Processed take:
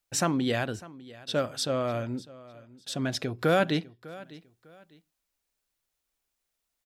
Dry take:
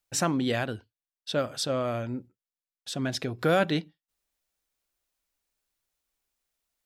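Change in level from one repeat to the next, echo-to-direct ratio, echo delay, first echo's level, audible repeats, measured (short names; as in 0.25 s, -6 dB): -11.0 dB, -19.0 dB, 0.601 s, -19.5 dB, 2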